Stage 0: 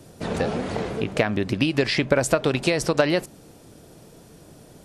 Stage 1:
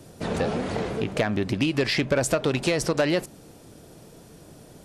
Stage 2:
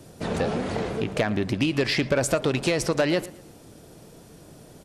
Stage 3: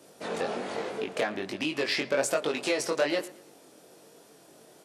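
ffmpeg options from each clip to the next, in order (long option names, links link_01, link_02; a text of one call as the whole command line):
ffmpeg -i in.wav -af "asoftclip=type=tanh:threshold=-14.5dB" out.wav
ffmpeg -i in.wav -filter_complex "[0:a]asplit=2[link_01][link_02];[link_02]adelay=113,lowpass=frequency=4100:poles=1,volume=-18.5dB,asplit=2[link_03][link_04];[link_04]adelay=113,lowpass=frequency=4100:poles=1,volume=0.36,asplit=2[link_05][link_06];[link_06]adelay=113,lowpass=frequency=4100:poles=1,volume=0.36[link_07];[link_01][link_03][link_05][link_07]amix=inputs=4:normalize=0" out.wav
ffmpeg -i in.wav -af "highpass=350,flanger=delay=19.5:depth=3.1:speed=1.2" out.wav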